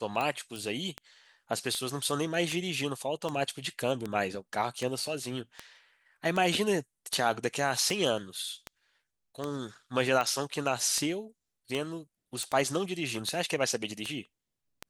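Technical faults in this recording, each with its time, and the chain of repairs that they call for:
tick 78 rpm -19 dBFS
0.56 s: pop
12.43 s: pop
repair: de-click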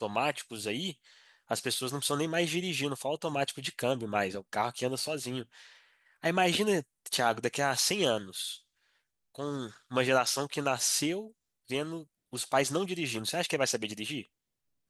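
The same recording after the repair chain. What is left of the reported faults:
nothing left

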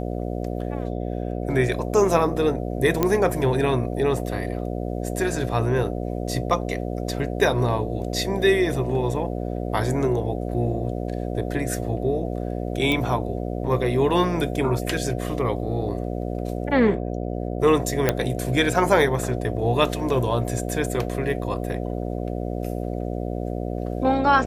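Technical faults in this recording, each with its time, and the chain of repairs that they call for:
buzz 60 Hz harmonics 12 -28 dBFS
3.03 s: pop -6 dBFS
12.92 s: pop -11 dBFS
18.09 s: pop -4 dBFS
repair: de-click; de-hum 60 Hz, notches 12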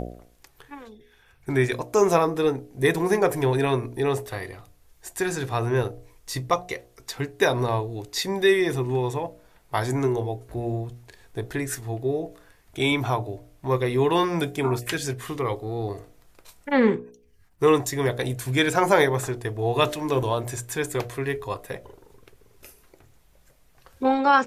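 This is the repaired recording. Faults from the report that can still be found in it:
nothing left

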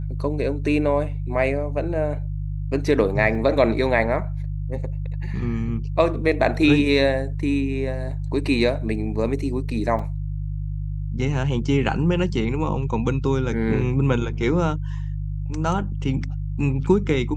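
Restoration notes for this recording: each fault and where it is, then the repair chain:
hum 50 Hz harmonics 3 -27 dBFS
3.35 s: dropout 2.1 ms
9.99 s: dropout 4.1 ms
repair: de-hum 50 Hz, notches 3; interpolate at 3.35 s, 2.1 ms; interpolate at 9.99 s, 4.1 ms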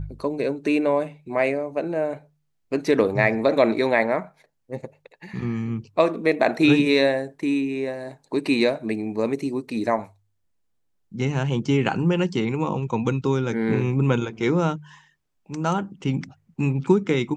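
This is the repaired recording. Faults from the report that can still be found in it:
nothing left

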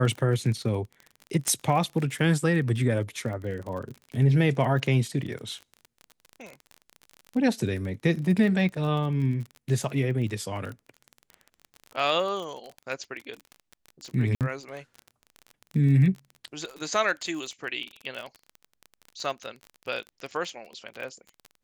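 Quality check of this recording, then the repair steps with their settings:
crackle 29 per s -33 dBFS
1.48 s: pop -12 dBFS
14.35–14.41 s: dropout 58 ms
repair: de-click; interpolate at 14.35 s, 58 ms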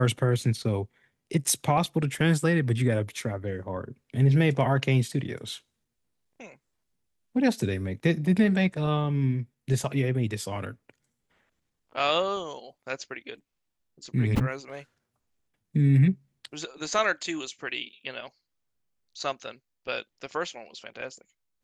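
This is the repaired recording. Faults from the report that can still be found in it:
1.48 s: pop

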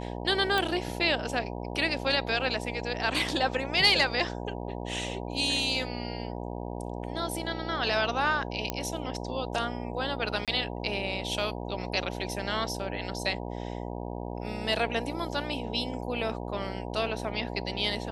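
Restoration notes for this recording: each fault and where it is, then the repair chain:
buzz 60 Hz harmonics 16 -36 dBFS
0.58 s: pop
8.70 s: pop -12 dBFS
10.45–10.48 s: dropout 27 ms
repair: de-click; de-hum 60 Hz, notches 16; interpolate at 10.45 s, 27 ms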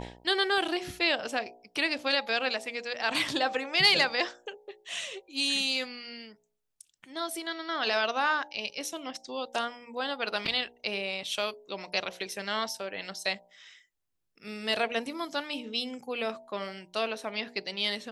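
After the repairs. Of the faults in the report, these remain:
nothing left

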